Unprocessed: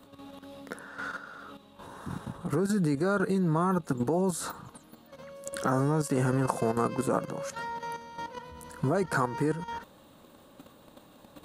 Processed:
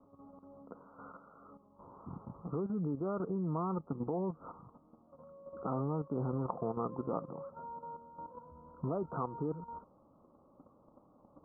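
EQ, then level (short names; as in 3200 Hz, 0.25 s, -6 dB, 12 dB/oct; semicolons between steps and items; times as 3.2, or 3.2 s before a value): steep low-pass 1300 Hz 96 dB/oct; -8.5 dB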